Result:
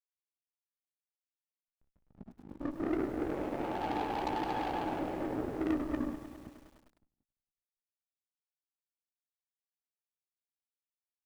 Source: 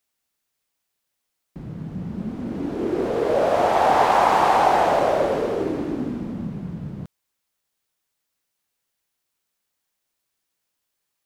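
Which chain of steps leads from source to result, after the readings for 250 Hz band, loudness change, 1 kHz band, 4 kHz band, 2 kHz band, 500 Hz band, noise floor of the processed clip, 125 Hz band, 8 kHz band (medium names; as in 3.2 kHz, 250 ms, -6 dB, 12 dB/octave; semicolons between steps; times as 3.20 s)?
-8.5 dB, -14.5 dB, -18.5 dB, -15.5 dB, -16.5 dB, -17.5 dB, under -85 dBFS, -14.5 dB, under -15 dB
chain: gate -26 dBFS, range -8 dB; in parallel at -11 dB: saturation -17 dBFS, distortion -11 dB; on the sum: cascade formant filter u; hysteresis with a dead band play -33.5 dBFS; Chebyshev shaper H 4 -14 dB, 5 -38 dB, 6 -11 dB, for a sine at -18.5 dBFS; doubling 16 ms -10 dB; on a send: feedback delay 184 ms, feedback 53%, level -19 dB; on the sum: bit-crushed delay 103 ms, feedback 80%, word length 8-bit, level -12.5 dB; trim -5.5 dB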